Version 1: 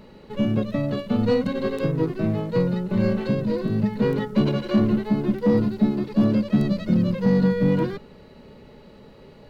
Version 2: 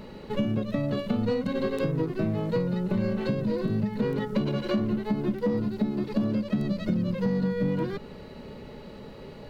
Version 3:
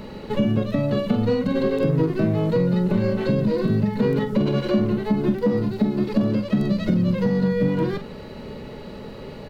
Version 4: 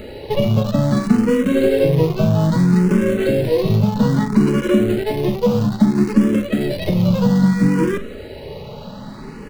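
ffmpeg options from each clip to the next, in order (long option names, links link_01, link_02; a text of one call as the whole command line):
ffmpeg -i in.wav -af "acompressor=threshold=-28dB:ratio=6,volume=4dB" out.wav
ffmpeg -i in.wav -filter_complex "[0:a]asplit=2[link_01][link_02];[link_02]adelay=44,volume=-9.5dB[link_03];[link_01][link_03]amix=inputs=2:normalize=0,acrossover=split=770[link_04][link_05];[link_05]alimiter=level_in=8dB:limit=-24dB:level=0:latency=1:release=105,volume=-8dB[link_06];[link_04][link_06]amix=inputs=2:normalize=0,volume=6dB" out.wav
ffmpeg -i in.wav -filter_complex "[0:a]asplit=2[link_01][link_02];[link_02]acrusher=bits=5:dc=4:mix=0:aa=0.000001,volume=-8dB[link_03];[link_01][link_03]amix=inputs=2:normalize=0,asplit=2[link_04][link_05];[link_05]afreqshift=0.61[link_06];[link_04][link_06]amix=inputs=2:normalize=1,volume=5dB" out.wav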